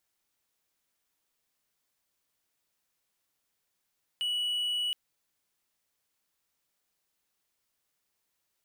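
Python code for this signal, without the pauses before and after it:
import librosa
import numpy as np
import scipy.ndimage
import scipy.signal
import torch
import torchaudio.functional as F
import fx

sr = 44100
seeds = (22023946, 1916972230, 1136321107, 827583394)

y = 10.0 ** (-26.0 / 20.0) * (1.0 - 4.0 * np.abs(np.mod(2940.0 * (np.arange(round(0.72 * sr)) / sr) + 0.25, 1.0) - 0.5))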